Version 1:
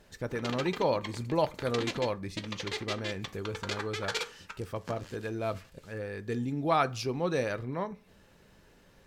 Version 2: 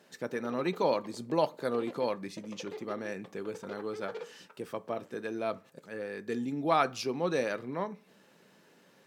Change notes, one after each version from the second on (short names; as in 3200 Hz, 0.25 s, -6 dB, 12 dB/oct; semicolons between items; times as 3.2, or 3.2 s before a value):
background: add band-pass 490 Hz, Q 1.8; master: add HPF 170 Hz 24 dB/oct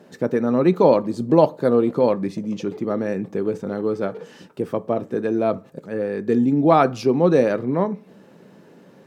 speech +9.5 dB; master: add tilt shelf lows +8 dB